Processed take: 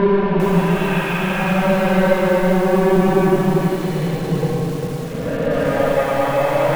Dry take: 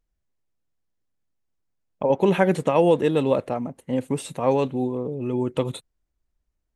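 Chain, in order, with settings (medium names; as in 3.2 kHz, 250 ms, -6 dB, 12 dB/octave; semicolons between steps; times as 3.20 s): overload inside the chain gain 22.5 dB; Paulstretch 14×, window 0.10 s, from 2.28 s; distance through air 350 m; bit-crushed delay 398 ms, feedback 35%, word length 7-bit, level -4 dB; trim +9 dB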